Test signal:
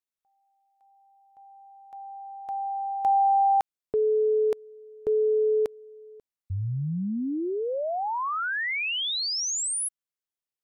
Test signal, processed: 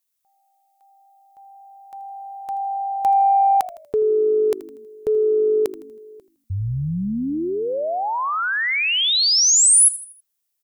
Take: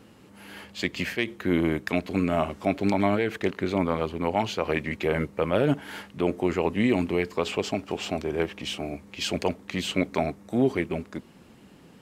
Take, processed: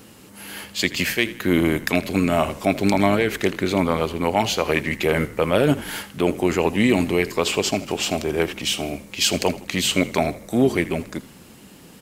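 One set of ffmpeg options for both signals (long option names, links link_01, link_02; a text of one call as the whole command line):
ffmpeg -i in.wav -filter_complex "[0:a]crystalizer=i=2.5:c=0,acontrast=23,asplit=5[link_01][link_02][link_03][link_04][link_05];[link_02]adelay=80,afreqshift=-51,volume=-16.5dB[link_06];[link_03]adelay=160,afreqshift=-102,volume=-23.8dB[link_07];[link_04]adelay=240,afreqshift=-153,volume=-31.2dB[link_08];[link_05]adelay=320,afreqshift=-204,volume=-38.5dB[link_09];[link_01][link_06][link_07][link_08][link_09]amix=inputs=5:normalize=0" out.wav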